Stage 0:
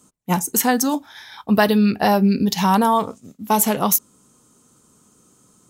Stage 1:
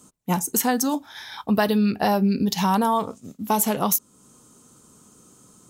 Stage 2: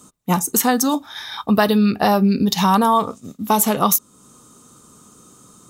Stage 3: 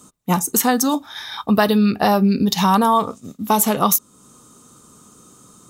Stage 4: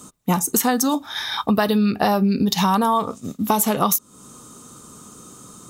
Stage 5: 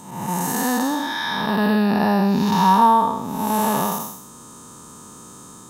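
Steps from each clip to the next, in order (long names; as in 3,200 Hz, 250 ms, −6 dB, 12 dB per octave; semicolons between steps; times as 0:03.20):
downward compressor 1.5 to 1, threshold −33 dBFS, peak gain reduction 8 dB; parametric band 2,000 Hz −2 dB; level +3 dB
hollow resonant body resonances 1,200/3,700 Hz, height 10 dB, ringing for 35 ms; level +4.5 dB
no processing that can be heard
downward compressor 2.5 to 1, threshold −24 dBFS, peak gain reduction 9 dB; level +5 dB
spectrum smeared in time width 313 ms; hollow resonant body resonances 930/1,700 Hz, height 11 dB, ringing for 30 ms; level +2.5 dB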